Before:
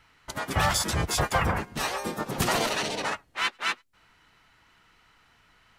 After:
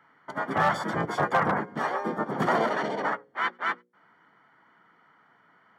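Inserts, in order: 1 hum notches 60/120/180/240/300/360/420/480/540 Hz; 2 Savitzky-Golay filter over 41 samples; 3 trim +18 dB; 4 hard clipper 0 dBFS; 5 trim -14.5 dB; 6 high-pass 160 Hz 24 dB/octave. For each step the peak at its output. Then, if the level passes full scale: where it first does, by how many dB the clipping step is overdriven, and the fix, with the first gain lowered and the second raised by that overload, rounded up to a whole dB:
-12.5 dBFS, -13.5 dBFS, +4.5 dBFS, 0.0 dBFS, -14.5 dBFS, -11.5 dBFS; step 3, 4.5 dB; step 3 +13 dB, step 5 -9.5 dB

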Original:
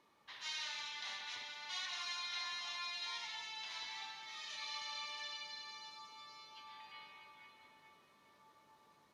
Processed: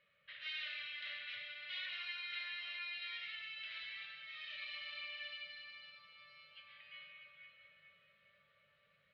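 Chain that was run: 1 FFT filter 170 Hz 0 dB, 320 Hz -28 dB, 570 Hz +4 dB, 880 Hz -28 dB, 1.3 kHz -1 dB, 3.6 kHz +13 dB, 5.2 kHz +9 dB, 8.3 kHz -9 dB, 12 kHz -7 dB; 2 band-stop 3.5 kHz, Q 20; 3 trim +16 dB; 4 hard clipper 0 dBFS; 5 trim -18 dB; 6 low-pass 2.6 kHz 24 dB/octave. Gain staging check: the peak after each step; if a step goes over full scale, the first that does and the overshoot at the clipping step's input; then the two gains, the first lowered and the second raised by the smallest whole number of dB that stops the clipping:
-20.5 dBFS, -20.5 dBFS, -4.5 dBFS, -4.5 dBFS, -22.5 dBFS, -31.5 dBFS; nothing clips

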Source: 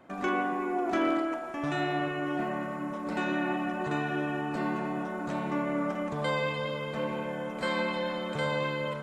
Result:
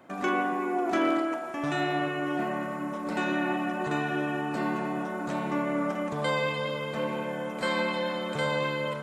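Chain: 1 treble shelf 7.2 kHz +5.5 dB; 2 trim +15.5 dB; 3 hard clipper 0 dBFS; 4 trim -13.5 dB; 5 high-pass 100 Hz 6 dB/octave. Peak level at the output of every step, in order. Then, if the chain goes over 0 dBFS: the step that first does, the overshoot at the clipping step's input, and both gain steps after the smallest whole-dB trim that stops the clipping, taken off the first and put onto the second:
-18.0 dBFS, -2.5 dBFS, -2.5 dBFS, -16.0 dBFS, -16.0 dBFS; nothing clips

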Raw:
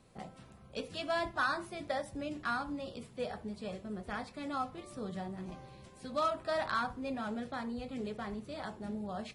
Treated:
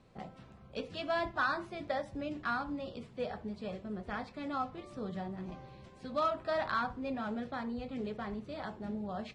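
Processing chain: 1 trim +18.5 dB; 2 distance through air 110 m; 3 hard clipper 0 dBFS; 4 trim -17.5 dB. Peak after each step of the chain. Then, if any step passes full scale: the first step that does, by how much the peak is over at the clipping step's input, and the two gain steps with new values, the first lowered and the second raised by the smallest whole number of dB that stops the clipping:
-3.0 dBFS, -3.5 dBFS, -3.5 dBFS, -21.0 dBFS; nothing clips

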